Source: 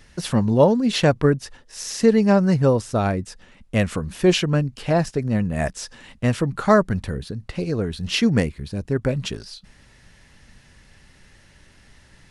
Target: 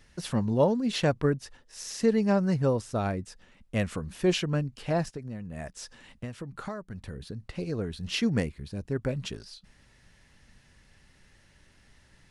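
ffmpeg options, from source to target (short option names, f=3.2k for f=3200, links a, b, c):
-filter_complex "[0:a]asplit=3[a][b][c];[a]afade=t=out:st=5.09:d=0.02[d];[b]acompressor=threshold=-26dB:ratio=10,afade=t=in:st=5.09:d=0.02,afade=t=out:st=7.2:d=0.02[e];[c]afade=t=in:st=7.2:d=0.02[f];[d][e][f]amix=inputs=3:normalize=0,volume=-8dB"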